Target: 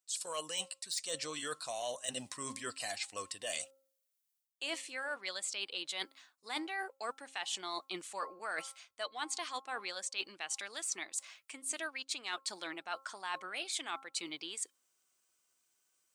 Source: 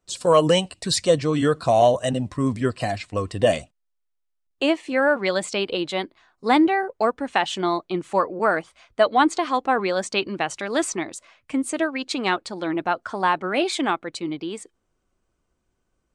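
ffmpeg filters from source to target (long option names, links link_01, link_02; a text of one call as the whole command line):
ffmpeg -i in.wav -af "deesser=0.45,aderivative,bandreject=frequency=268.8:width_type=h:width=4,bandreject=frequency=537.6:width_type=h:width=4,bandreject=frequency=806.4:width_type=h:width=4,bandreject=frequency=1075.2:width_type=h:width=4,bandreject=frequency=1344:width_type=h:width=4,areverse,acompressor=threshold=-46dB:ratio=6,areverse,volume=9dB" out.wav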